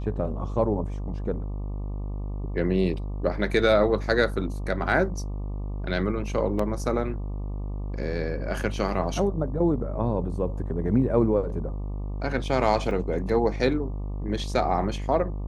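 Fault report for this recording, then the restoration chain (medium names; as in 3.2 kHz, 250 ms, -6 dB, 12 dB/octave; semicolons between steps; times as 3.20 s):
buzz 50 Hz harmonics 24 -31 dBFS
6.59 s: dropout 4 ms
12.91 s: dropout 3.2 ms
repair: de-hum 50 Hz, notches 24; interpolate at 6.59 s, 4 ms; interpolate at 12.91 s, 3.2 ms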